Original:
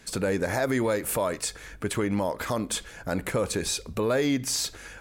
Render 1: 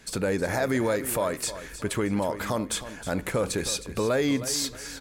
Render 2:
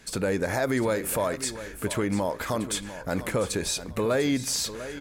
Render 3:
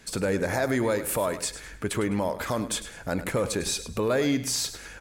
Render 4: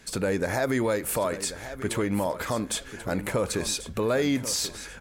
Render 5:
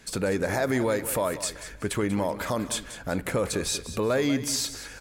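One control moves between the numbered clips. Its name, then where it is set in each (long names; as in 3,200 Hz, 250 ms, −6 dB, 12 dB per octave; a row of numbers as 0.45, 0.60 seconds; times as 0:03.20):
repeating echo, delay time: 314, 698, 103, 1,088, 189 milliseconds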